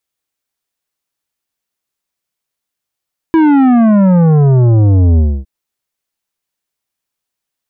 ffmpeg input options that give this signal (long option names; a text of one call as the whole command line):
ffmpeg -f lavfi -i "aevalsrc='0.473*clip((2.11-t)/0.27,0,1)*tanh(3.55*sin(2*PI*330*2.11/log(65/330)*(exp(log(65/330)*t/2.11)-1)))/tanh(3.55)':duration=2.11:sample_rate=44100" out.wav